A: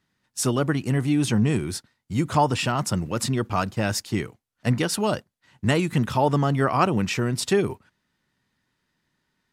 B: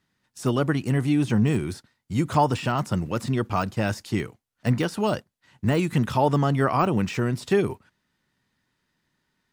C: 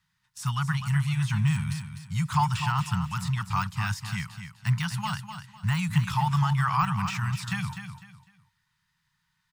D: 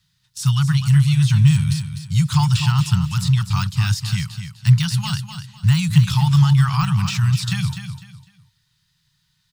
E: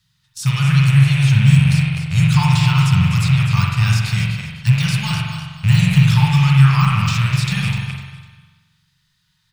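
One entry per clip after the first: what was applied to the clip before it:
de-essing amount 80%
elliptic band-stop filter 170–930 Hz, stop band 40 dB; repeating echo 251 ms, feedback 29%, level −9 dB
octave-band graphic EQ 125/250/500/1,000/2,000/4,000 Hz +5/−6/−10/−8/−7/+6 dB; level +9 dB
loose part that buzzes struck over −24 dBFS, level −18 dBFS; flutter between parallel walls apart 10.7 metres, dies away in 0.21 s; spring reverb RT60 1.2 s, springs 44 ms, chirp 60 ms, DRR −1 dB

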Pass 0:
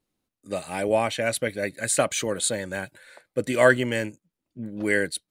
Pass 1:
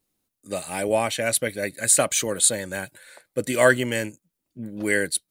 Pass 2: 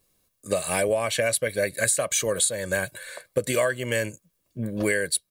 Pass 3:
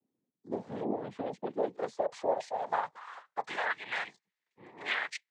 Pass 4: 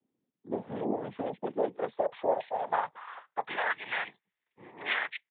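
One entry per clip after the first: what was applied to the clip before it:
high-shelf EQ 6,600 Hz +12 dB
comb filter 1.8 ms, depth 52%; downward compressor 16 to 1, threshold −27 dBFS, peak gain reduction 19.5 dB; level +7 dB
cochlear-implant simulation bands 6; band-pass filter sweep 270 Hz → 2,000 Hz, 0:01.21–0:03.88
downsampling to 8,000 Hz; level +2 dB

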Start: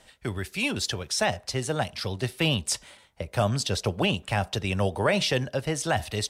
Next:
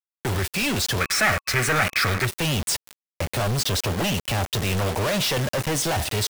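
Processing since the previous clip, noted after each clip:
log-companded quantiser 2 bits
gain on a spectral selection 0:01.01–0:02.26, 1,100–2,600 Hz +11 dB
level +2.5 dB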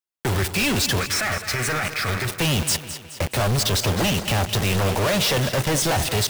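brickwall limiter −20 dBFS, peak gain reduction 10 dB
echo with a time of its own for lows and highs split 350 Hz, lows 153 ms, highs 212 ms, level −12 dB
level +2.5 dB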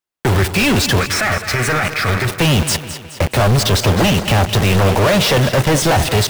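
high-shelf EQ 3,400 Hz −6.5 dB
level +8.5 dB

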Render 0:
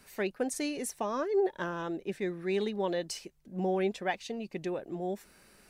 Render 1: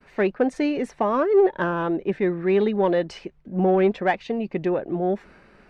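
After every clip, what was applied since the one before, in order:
low-pass filter 2,100 Hz 12 dB per octave
downward expander −58 dBFS
in parallel at −7.5 dB: soft clipping −30 dBFS, distortion −11 dB
on the sum: level +9 dB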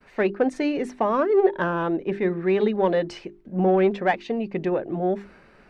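mains-hum notches 50/100/150/200/250/300/350/400 Hz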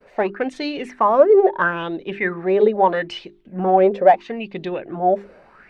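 auto-filter bell 0.76 Hz 500–3,900 Hz +17 dB
level −2.5 dB

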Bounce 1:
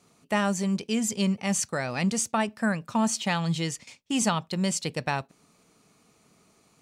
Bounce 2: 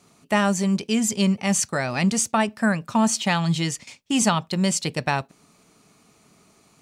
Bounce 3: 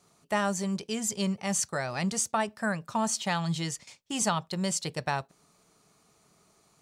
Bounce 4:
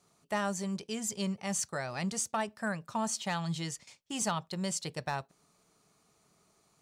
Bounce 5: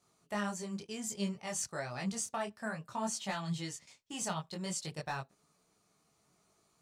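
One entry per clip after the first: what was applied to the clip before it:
notch filter 490 Hz, Q 12; level +5 dB
graphic EQ with 15 bands 100 Hz −3 dB, 250 Hz −8 dB, 2,500 Hz −5 dB; level −5.5 dB
gain into a clipping stage and back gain 19 dB; level −4.5 dB
micro pitch shift up and down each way 21 cents

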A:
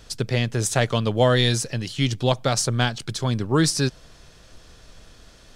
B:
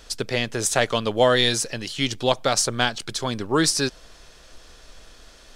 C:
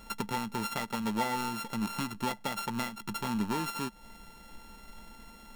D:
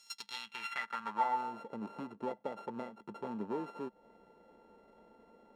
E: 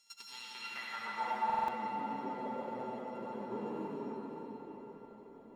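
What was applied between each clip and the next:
parametric band 120 Hz −12 dB 1.7 octaves; level +2.5 dB
samples sorted by size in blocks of 32 samples; downward compressor 5 to 1, threshold −30 dBFS, peak gain reduction 15.5 dB; hollow resonant body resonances 210/890/2,000/3,300 Hz, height 16 dB, ringing for 75 ms; level −4.5 dB
band-pass filter sweep 5,900 Hz → 480 Hz, 0:00.06–0:01.67; level +3 dB
flanger 0.52 Hz, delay 3.9 ms, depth 2.5 ms, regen −72%; convolution reverb RT60 5.4 s, pre-delay 67 ms, DRR −7 dB; buffer that repeats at 0:01.45, samples 2,048, times 4; level −3 dB

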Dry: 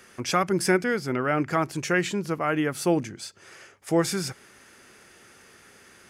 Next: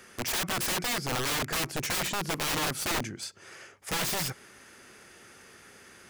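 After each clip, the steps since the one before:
wrap-around overflow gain 24.5 dB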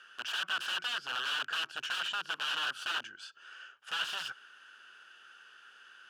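pair of resonant band-passes 2,100 Hz, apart 0.94 octaves
level +5.5 dB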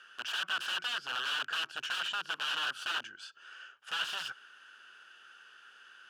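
no processing that can be heard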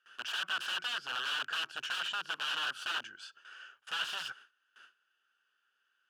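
noise gate with hold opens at −44 dBFS
level −1 dB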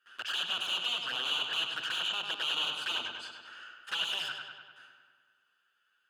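notch filter 5,700 Hz, Q 7.2
flanger swept by the level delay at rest 10.9 ms, full sweep at −33.5 dBFS
on a send: feedback echo with a low-pass in the loop 99 ms, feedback 67%, low-pass 4,900 Hz, level −5 dB
on the sum: level +5 dB

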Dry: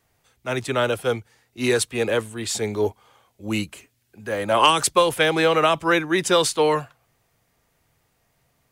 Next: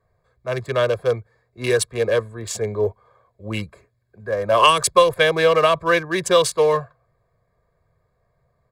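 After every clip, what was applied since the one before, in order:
adaptive Wiener filter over 15 samples
comb filter 1.8 ms, depth 73%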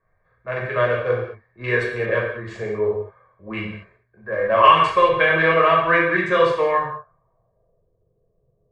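reverb whose tail is shaped and stops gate 250 ms falling, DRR −4.5 dB
low-pass filter sweep 1,900 Hz → 430 Hz, 0:06.72–0:07.94
level −6.5 dB

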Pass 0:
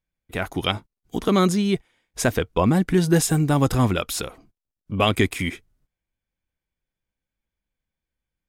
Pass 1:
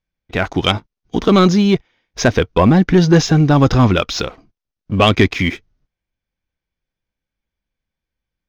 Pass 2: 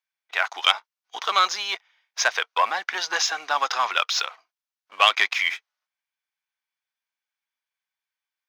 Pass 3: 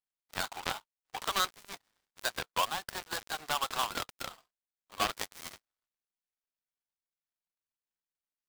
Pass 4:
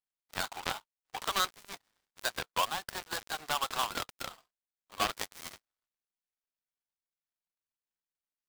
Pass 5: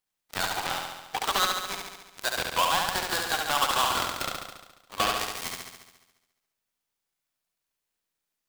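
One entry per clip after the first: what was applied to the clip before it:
Butterworth low-pass 6,400 Hz 96 dB per octave; leveller curve on the samples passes 1; level +5 dB
high-pass filter 860 Hz 24 dB per octave; level −1 dB
gap after every zero crossing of 0.22 ms; downward compressor 1.5 to 1, threshold −37 dBFS, peak gain reduction 8 dB
no processing that can be heard
brickwall limiter −20 dBFS, peak gain reduction 9 dB; on a send: flutter between parallel walls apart 12 metres, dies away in 1.1 s; on the sum: level +8.5 dB

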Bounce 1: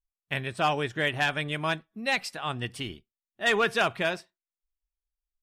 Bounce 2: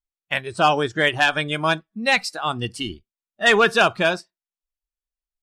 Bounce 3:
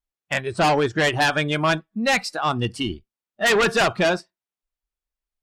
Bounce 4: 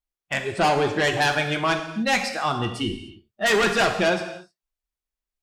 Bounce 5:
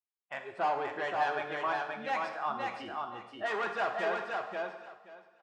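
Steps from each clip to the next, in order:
noise reduction from a noise print of the clip's start 13 dB; low-pass filter 11,000 Hz 12 dB per octave; level +8.5 dB
high-shelf EQ 3,100 Hz −8 dB; harmonic generator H 5 −7 dB, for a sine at −6.5 dBFS; level −5.5 dB
reverb whose tail is shaped and stops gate 330 ms falling, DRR 4.5 dB; level −2.5 dB
resonant band-pass 950 Hz, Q 1.3; repeating echo 527 ms, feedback 17%, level −3.5 dB; level −7.5 dB

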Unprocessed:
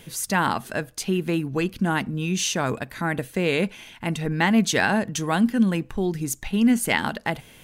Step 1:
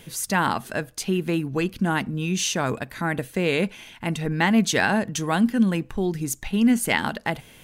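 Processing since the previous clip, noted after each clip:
no processing that can be heard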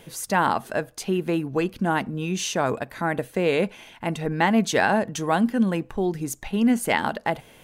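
parametric band 650 Hz +8 dB 2.1 octaves
level −4 dB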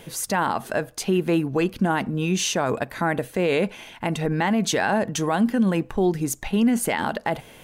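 brickwall limiter −16.5 dBFS, peak gain reduction 9 dB
level +4 dB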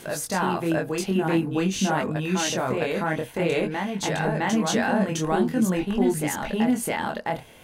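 backwards echo 660 ms −3 dB
chorus effect 0.49 Hz, delay 20 ms, depth 5.8 ms

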